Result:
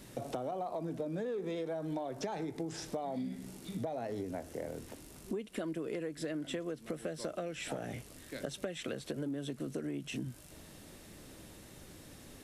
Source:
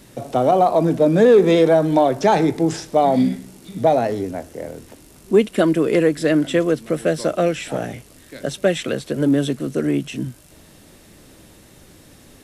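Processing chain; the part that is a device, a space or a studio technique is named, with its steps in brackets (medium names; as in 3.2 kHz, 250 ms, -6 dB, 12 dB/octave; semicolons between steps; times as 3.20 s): serial compression, peaks first (compression, threshold -24 dBFS, peak gain reduction 15 dB; compression 2.5:1, threshold -31 dBFS, peak gain reduction 7 dB); trim -6 dB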